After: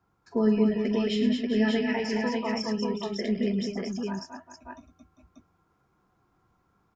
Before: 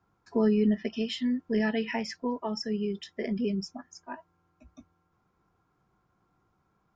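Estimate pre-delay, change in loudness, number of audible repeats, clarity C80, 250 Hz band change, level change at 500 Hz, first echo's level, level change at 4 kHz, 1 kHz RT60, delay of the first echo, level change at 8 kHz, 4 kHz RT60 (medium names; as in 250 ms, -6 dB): no reverb, +2.5 dB, 5, no reverb, +3.0 dB, +3.0 dB, -12.5 dB, +3.0 dB, no reverb, 42 ms, no reading, no reverb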